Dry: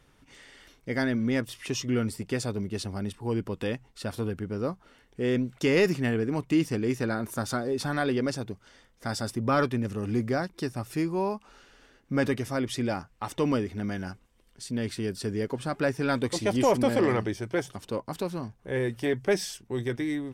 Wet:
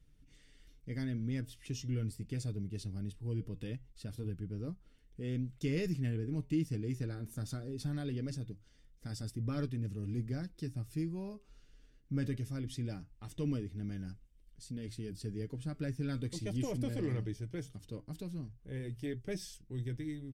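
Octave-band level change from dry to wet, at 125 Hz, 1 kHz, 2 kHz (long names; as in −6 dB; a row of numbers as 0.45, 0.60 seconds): −3.5, −23.5, −18.0 decibels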